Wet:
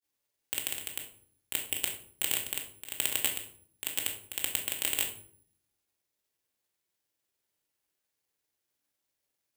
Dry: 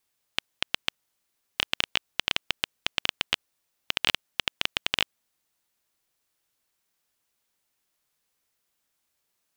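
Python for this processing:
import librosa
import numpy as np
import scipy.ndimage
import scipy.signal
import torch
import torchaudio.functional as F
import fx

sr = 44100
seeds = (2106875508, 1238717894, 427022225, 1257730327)

y = scipy.signal.sosfilt(scipy.signal.butter(2, 46.0, 'highpass', fs=sr, output='sos'), x)
y = fx.peak_eq(y, sr, hz=14000.0, db=-14.0, octaves=0.66)
y = fx.granulator(y, sr, seeds[0], grain_ms=100.0, per_s=20.0, spray_ms=100.0, spread_st=0)
y = fx.graphic_eq_31(y, sr, hz=(100, 160, 400, 1250), db=(6, -5, 11, -7))
y = fx.room_shoebox(y, sr, seeds[1], volume_m3=660.0, walls='furnished', distance_m=2.3)
y = (np.kron(y[::4], np.eye(4)[0]) * 4)[:len(y)]
y = y * librosa.db_to_amplitude(-9.0)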